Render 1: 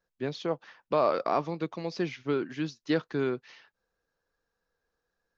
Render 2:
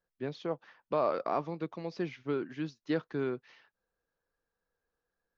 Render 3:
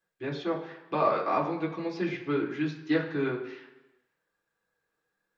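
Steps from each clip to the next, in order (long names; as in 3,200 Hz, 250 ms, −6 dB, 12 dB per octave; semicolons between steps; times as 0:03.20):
high-shelf EQ 4,100 Hz −9.5 dB; level −4 dB
convolution reverb RT60 1.0 s, pre-delay 3 ms, DRR −4 dB; level +1.5 dB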